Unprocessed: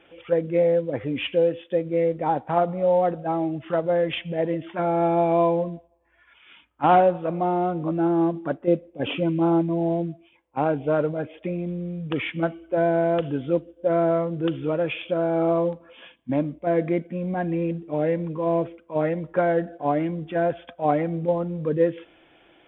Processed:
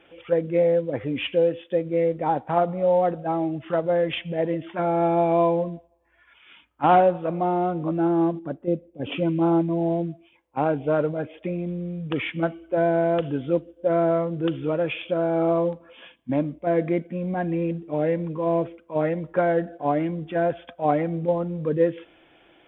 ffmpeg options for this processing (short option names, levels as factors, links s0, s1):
-filter_complex "[0:a]asettb=1/sr,asplit=3[s0][s1][s2];[s0]atrim=end=8.394[s3];[s1]atrim=start=8.39:end=9.12,asetpts=PTS-STARTPTS,afade=t=in:d=0.004:c=qsin,afade=t=out:st=0.726:d=0.004:c=qsin,equalizer=f=1700:w=0.32:g=-10[s4];[s2]atrim=start=9.116[s5];[s3][s4]acrossfade=d=0.004:c1=hsin:c2=qsin[s6];[s6][s5]acrossfade=d=0.004:c1=qsin:c2=hsin"